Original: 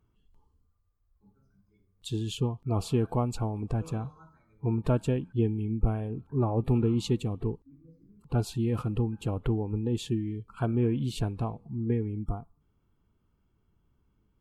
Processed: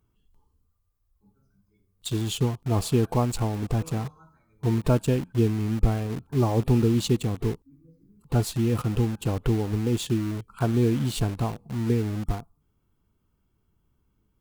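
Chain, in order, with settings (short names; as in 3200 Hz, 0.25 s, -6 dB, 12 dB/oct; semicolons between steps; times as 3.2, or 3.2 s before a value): high shelf 7200 Hz +9 dB; in parallel at -4 dB: bit-crush 6-bit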